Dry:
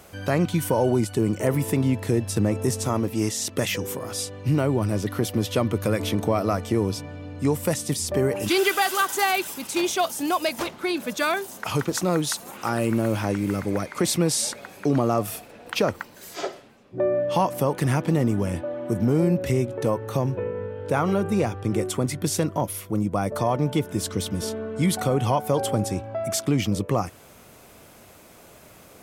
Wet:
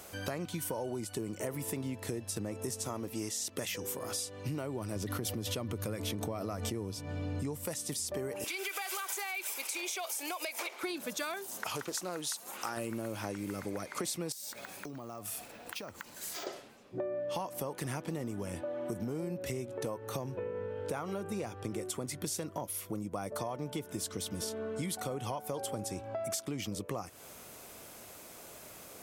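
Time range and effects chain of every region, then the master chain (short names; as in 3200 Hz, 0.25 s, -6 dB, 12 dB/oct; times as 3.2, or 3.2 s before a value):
4.96–7.66 low shelf 210 Hz +9 dB + backwards sustainer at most 39 dB/s
8.44–10.83 HPF 400 Hz 24 dB/oct + bell 2300 Hz +13 dB 0.22 oct + compressor, threshold -27 dBFS
11.68–12.77 low shelf 360 Hz -8 dB + Doppler distortion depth 0.1 ms
14.32–16.47 bell 450 Hz -5 dB 0.91 oct + compressor 8:1, threshold -36 dBFS + careless resampling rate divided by 2×, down none, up hold
whole clip: tone controls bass -5 dB, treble +5 dB; compressor 6:1, threshold -32 dBFS; gain -2.5 dB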